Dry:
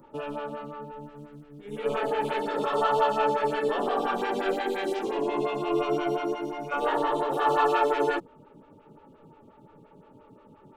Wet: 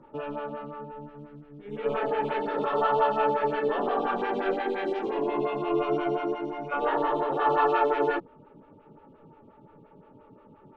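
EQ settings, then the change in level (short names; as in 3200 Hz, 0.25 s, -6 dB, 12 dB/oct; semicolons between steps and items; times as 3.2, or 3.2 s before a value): LPF 2700 Hz 12 dB/oct; 0.0 dB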